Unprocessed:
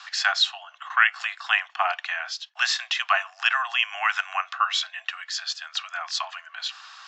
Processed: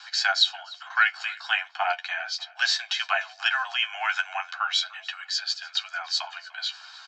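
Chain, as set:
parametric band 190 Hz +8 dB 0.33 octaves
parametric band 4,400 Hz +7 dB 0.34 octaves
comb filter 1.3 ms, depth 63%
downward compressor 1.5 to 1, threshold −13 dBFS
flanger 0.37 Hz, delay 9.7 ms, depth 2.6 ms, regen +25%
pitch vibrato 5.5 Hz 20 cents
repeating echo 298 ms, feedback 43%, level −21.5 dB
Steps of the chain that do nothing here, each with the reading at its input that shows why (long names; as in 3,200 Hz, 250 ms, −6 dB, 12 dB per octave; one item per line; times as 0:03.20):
parametric band 190 Hz: nothing at its input below 570 Hz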